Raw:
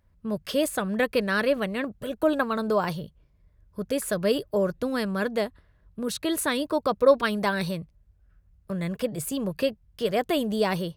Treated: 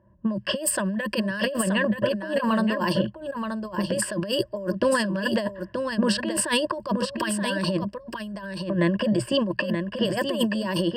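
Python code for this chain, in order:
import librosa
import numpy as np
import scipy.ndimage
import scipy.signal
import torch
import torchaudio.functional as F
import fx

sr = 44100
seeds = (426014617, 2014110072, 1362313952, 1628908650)

y = scipy.signal.sosfilt(scipy.signal.butter(2, 110.0, 'highpass', fs=sr, output='sos'), x)
y = fx.env_lowpass(y, sr, base_hz=910.0, full_db=-20.5)
y = fx.ripple_eq(y, sr, per_octave=1.3, db=17)
y = fx.over_compress(y, sr, threshold_db=-29.0, ratio=-1.0)
y = y + 10.0 ** (-6.5 / 20.0) * np.pad(y, (int(927 * sr / 1000.0), 0))[:len(y)]
y = y * 10.0 ** (3.0 / 20.0)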